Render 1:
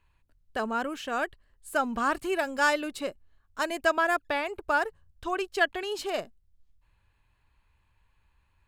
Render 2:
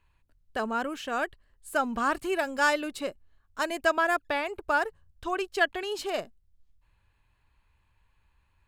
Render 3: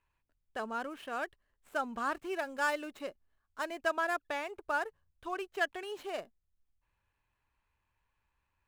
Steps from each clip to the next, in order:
nothing audible
median filter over 9 samples; low shelf 180 Hz -9 dB; gain -6.5 dB

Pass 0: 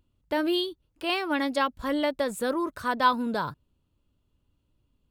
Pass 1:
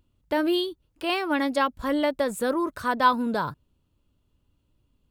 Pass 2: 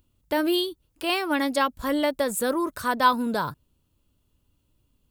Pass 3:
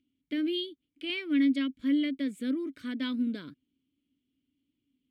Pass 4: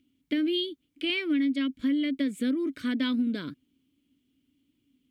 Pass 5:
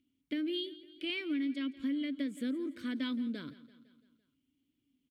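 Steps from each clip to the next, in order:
dynamic EQ 3800 Hz, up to -3 dB, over -42 dBFS, Q 0.8; gain +2.5 dB
high shelf 6000 Hz +11 dB
vowel filter i; gain +4.5 dB
compressor 6:1, threshold -32 dBFS, peak gain reduction 10 dB; gain +8 dB
feedback echo 0.169 s, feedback 58%, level -18 dB; gain -8 dB

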